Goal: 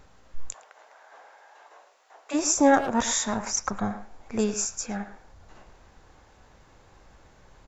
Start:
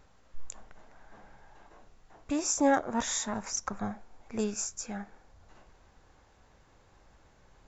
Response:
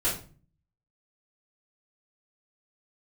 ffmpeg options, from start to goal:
-filter_complex "[0:a]asplit=3[a][b][c];[a]afade=t=out:st=0.52:d=0.02[d];[b]highpass=f=500:w=0.5412,highpass=f=500:w=1.3066,afade=t=in:st=0.52:d=0.02,afade=t=out:st=2.33:d=0.02[e];[c]afade=t=in:st=2.33:d=0.02[f];[d][e][f]amix=inputs=3:normalize=0,asplit=2[g][h];[h]adelay=110,highpass=300,lowpass=3.4k,asoftclip=type=hard:threshold=-22.5dB,volume=-10dB[i];[g][i]amix=inputs=2:normalize=0,volume=6dB"

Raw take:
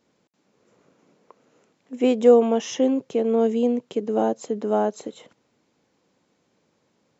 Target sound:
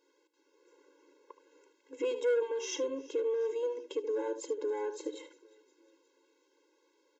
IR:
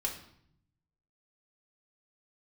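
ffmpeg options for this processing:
-filter_complex "[0:a]equalizer=f=600:t=o:w=0.77:g=-2,bandreject=f=50:t=h:w=6,bandreject=f=100:t=h:w=6,bandreject=f=150:t=h:w=6,bandreject=f=200:t=h:w=6,bandreject=f=250:t=h:w=6,bandreject=f=300:t=h:w=6,asplit=2[a][b];[b]aecho=0:1:74:0.224[c];[a][c]amix=inputs=2:normalize=0,asoftclip=type=tanh:threshold=-16dB,alimiter=limit=-24dB:level=0:latency=1:release=239,bandreject=f=1.2k:w=10,asplit=2[d][e];[e]asplit=4[f][g][h][i];[f]adelay=359,afreqshift=-100,volume=-22.5dB[j];[g]adelay=718,afreqshift=-200,volume=-27.7dB[k];[h]adelay=1077,afreqshift=-300,volume=-32.9dB[l];[i]adelay=1436,afreqshift=-400,volume=-38.1dB[m];[j][k][l][m]amix=inputs=4:normalize=0[n];[d][n]amix=inputs=2:normalize=0,afftfilt=real='re*eq(mod(floor(b*sr/1024/280),2),1)':imag='im*eq(mod(floor(b*sr/1024/280),2),1)':win_size=1024:overlap=0.75"

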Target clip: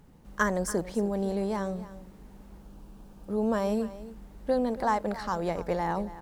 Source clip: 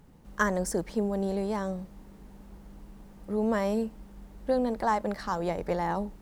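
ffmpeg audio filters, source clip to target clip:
-filter_complex "[0:a]asettb=1/sr,asplit=3[a][b][c];[a]atrim=end=2.624[d];[b]atrim=start=2.62:end=3.69,asetpts=PTS-STARTPTS,afade=t=in:d=0.004:c=qsin,afade=t=out:st=1.066:d=0.004:c=qsin,equalizer=f=2k:w=6.3:g=-12.5[e];[c]atrim=start=3.686[f];[d][e]acrossfade=d=0.004:c1=hsin:c2=qsin[g];[g][f]acrossfade=d=0.004:c1=qsin:c2=hsin,asplit=2[h][i];[i]aecho=0:1:282:0.168[j];[h][j]amix=inputs=2:normalize=0"

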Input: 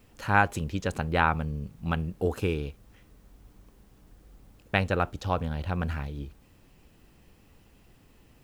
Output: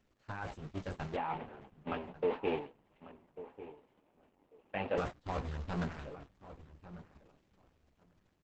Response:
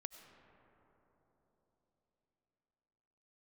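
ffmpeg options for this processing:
-filter_complex "[0:a]aeval=exprs='val(0)+0.5*0.0944*sgn(val(0))':c=same,agate=range=-45dB:threshold=-21dB:ratio=16:detection=peak,aemphasis=mode=reproduction:type=50fm,acompressor=threshold=-38dB:ratio=3,alimiter=level_in=7dB:limit=-24dB:level=0:latency=1:release=40,volume=-7dB,dynaudnorm=f=230:g=11:m=5dB,flanger=delay=15:depth=5.8:speed=0.55,asettb=1/sr,asplit=3[a][b][c];[a]atrim=end=1.164[d];[b]atrim=start=1.16:end=4.98,asetpts=PTS-STARTPTS,afade=t=in:d=0.004:c=qsin,afade=t=out:st=3.816:d=0.004:c=qsin,highpass=230,equalizer=f=250:t=q:w=4:g=4,equalizer=f=510:t=q:w=4:g=4,equalizer=f=870:t=q:w=4:g=7,equalizer=f=1.4k:t=q:w=4:g=-7,equalizer=f=2.8k:t=q:w=4:g=4,lowpass=f=3.1k:w=0.5412,lowpass=f=3.1k:w=1.3066[e];[c]atrim=start=4.976[f];[d][e]acrossfade=d=0.004:c1=hsin:c2=qsin[g];[g][f]acrossfade=d=0.004:c1=qsin:c2=hsin,asplit=2[h][i];[i]adelay=1145,lowpass=f=1.9k:p=1,volume=-14.5dB,asplit=2[j][k];[k]adelay=1145,lowpass=f=1.9k:p=1,volume=0.17[l];[h][j][l]amix=inputs=3:normalize=0,volume=4dB" -ar 48000 -c:a libopus -b:a 10k

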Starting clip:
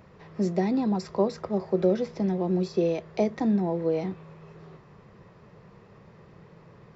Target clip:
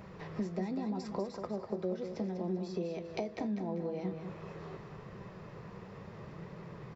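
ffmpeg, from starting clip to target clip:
-filter_complex "[0:a]acompressor=threshold=-39dB:ratio=5,flanger=delay=5:depth=6.1:regen=73:speed=0.76:shape=sinusoidal,asplit=2[a][b];[b]aecho=0:1:196|392|588|784:0.398|0.147|0.0545|0.0202[c];[a][c]amix=inputs=2:normalize=0,volume=7.5dB"

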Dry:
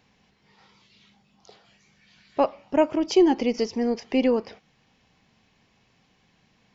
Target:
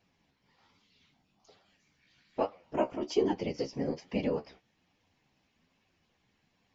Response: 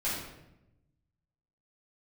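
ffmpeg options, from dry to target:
-af "afftfilt=real='hypot(re,im)*cos(2*PI*random(0))':imag='hypot(re,im)*sin(2*PI*random(1))':win_size=512:overlap=0.75,flanger=delay=9.7:depth=6.1:regen=33:speed=1.2:shape=triangular"

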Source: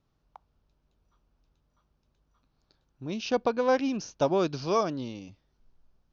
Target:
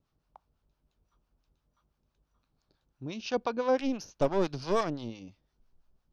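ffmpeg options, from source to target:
-filter_complex "[0:a]asettb=1/sr,asplit=3[a][b][c];[a]atrim=end=3.794[d];[b]atrim=start=3.79:end=5.1,asetpts=PTS-STARTPTS,afade=t=in:d=0.004:c=qsin,afade=t=out:st=1.306:d=0.004:c=qsin,aeval=exprs='0.237*(cos(1*acos(clip(val(0)/0.237,-1,1)))-cos(1*PI/2))+0.0335*(cos(6*acos(clip(val(0)/0.237,-1,1)))-cos(6*PI/2))+0.00473*(cos(8*acos(clip(val(0)/0.237,-1,1)))-cos(8*PI/2))':c=same[e];[c]atrim=start=5.096[f];[d][e]acrossfade=d=0.004:c1=hsin:c2=qsin[g];[g][f]acrossfade=d=0.004:c1=qsin:c2=hsin,acrossover=split=760[h][i];[h]aeval=exprs='val(0)*(1-0.7/2+0.7/2*cos(2*PI*5.9*n/s))':c=same[j];[i]aeval=exprs='val(0)*(1-0.7/2-0.7/2*cos(2*PI*5.9*n/s))':c=same[k];[j][k]amix=inputs=2:normalize=0"

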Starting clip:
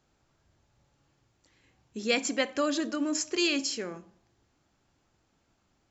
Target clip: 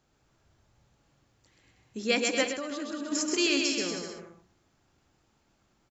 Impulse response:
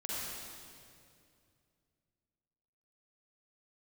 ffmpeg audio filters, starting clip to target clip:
-filter_complex "[0:a]asplit=2[a][b];[b]aecho=0:1:130|234|317.2|383.8|437:0.631|0.398|0.251|0.158|0.1[c];[a][c]amix=inputs=2:normalize=0,asettb=1/sr,asplit=3[d][e][f];[d]atrim=end=2.514[g];[e]atrim=start=2.51:end=3.12,asetpts=PTS-STARTPTS,afade=t=in:d=0.004:c=qsin,afade=t=out:st=0.606:d=0.004:c=qsin,acompressor=threshold=-32dB:ratio=10[h];[f]atrim=start=3.116[i];[g][h]acrossfade=d=0.004:c1=hsin:c2=qsin[j];[j][i]acrossfade=d=0.004:c1=qsin:c2=hsin"

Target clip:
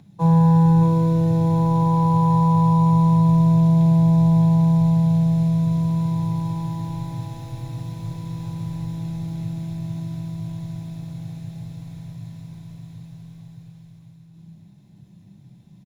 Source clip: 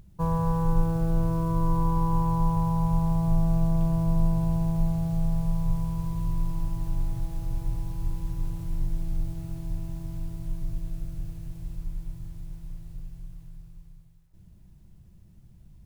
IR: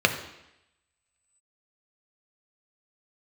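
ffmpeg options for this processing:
-filter_complex "[0:a]aecho=1:1:618:0.531[a];[1:a]atrim=start_sample=2205,asetrate=66150,aresample=44100[b];[a][b]afir=irnorm=-1:irlink=0,volume=-5.5dB"

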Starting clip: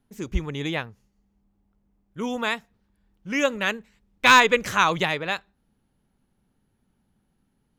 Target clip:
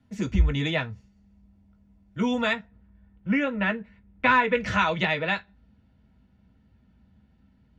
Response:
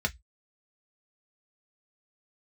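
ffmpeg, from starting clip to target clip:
-filter_complex "[0:a]asetnsamples=n=441:p=0,asendcmd='2.53 lowpass f 2000;4.55 lowpass f 4500',lowpass=8.1k,acompressor=threshold=-31dB:ratio=2[a];[1:a]atrim=start_sample=2205[b];[a][b]afir=irnorm=-1:irlink=0,volume=-1.5dB"

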